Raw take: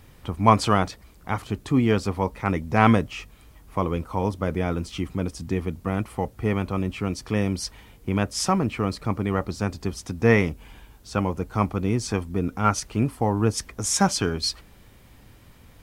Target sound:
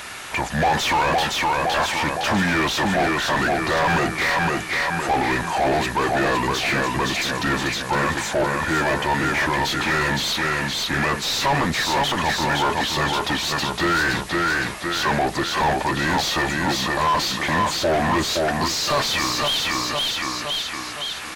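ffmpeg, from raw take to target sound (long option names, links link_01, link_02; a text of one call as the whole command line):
ffmpeg -i in.wav -filter_complex "[0:a]tiltshelf=frequency=1400:gain=-9.5,alimiter=limit=-13.5dB:level=0:latency=1:release=39,asplit=2[link_01][link_02];[link_02]aecho=0:1:380|760|1140|1520|1900:0.501|0.2|0.0802|0.0321|0.0128[link_03];[link_01][link_03]amix=inputs=2:normalize=0,asplit=2[link_04][link_05];[link_05]highpass=frequency=720:poles=1,volume=31dB,asoftclip=type=tanh:threshold=-11dB[link_06];[link_04][link_06]amix=inputs=2:normalize=0,lowpass=frequency=2600:poles=1,volume=-6dB,asetrate=32667,aresample=44100" out.wav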